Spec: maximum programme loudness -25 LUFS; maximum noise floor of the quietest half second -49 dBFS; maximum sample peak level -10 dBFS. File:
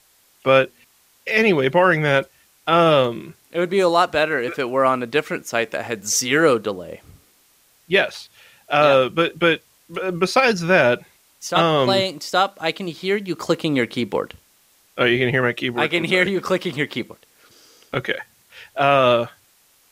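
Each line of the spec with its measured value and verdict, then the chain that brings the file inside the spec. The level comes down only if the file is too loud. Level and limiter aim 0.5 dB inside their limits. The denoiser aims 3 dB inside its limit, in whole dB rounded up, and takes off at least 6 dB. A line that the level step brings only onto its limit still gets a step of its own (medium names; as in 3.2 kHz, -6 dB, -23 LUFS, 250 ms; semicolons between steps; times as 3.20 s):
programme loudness -19.5 LUFS: fail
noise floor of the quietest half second -58 dBFS: pass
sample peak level -3.5 dBFS: fail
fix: trim -6 dB; peak limiter -10.5 dBFS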